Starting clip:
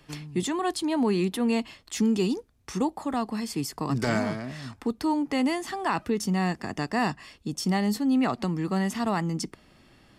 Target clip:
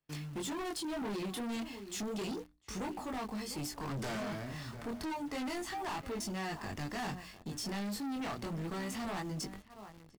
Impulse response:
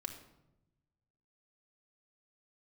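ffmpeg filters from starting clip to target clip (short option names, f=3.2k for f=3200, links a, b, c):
-filter_complex "[0:a]asubboost=boost=4:cutoff=89,agate=range=-23dB:threshold=-50dB:ratio=16:detection=peak,asplit=2[a][b];[b]adelay=699.7,volume=-18dB,highshelf=f=4k:g=-15.7[c];[a][c]amix=inputs=2:normalize=0,flanger=delay=19.5:depth=6.1:speed=0.31,bandreject=f=60:t=h:w=6,bandreject=f=120:t=h:w=6,bandreject=f=180:t=h:w=6,bandreject=f=240:t=h:w=6,bandreject=f=300:t=h:w=6,asplit=2[d][e];[e]acrusher=bits=7:mix=0:aa=0.000001,volume=-3.5dB[f];[d][f]amix=inputs=2:normalize=0,volume=30dB,asoftclip=hard,volume=-30dB,volume=-6dB"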